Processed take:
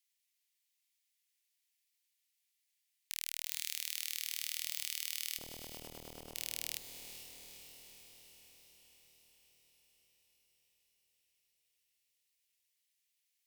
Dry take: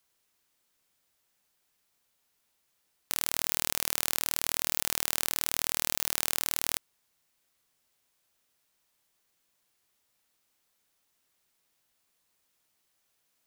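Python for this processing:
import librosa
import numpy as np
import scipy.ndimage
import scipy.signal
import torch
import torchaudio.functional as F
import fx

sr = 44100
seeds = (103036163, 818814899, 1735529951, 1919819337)

y = scipy.signal.sosfilt(scipy.signal.butter(8, 1900.0, 'highpass', fs=sr, output='sos'), x)
y = fx.clip_asym(y, sr, top_db=-14.0, bottom_db=-6.0)
y = fx.freq_invert(y, sr, carrier_hz=2800, at=(5.38, 6.35))
y = fx.echo_diffused(y, sr, ms=456, feedback_pct=65, wet_db=-9.5)
y = fx.transformer_sat(y, sr, knee_hz=3800.0)
y = y * librosa.db_to_amplitude(-7.0)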